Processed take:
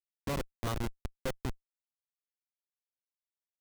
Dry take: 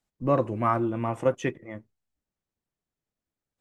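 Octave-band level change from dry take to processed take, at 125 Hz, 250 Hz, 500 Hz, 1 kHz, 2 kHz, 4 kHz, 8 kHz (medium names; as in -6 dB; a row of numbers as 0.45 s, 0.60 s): -8.0 dB, -12.0 dB, -14.5 dB, -14.5 dB, -7.0 dB, +3.5 dB, +2.5 dB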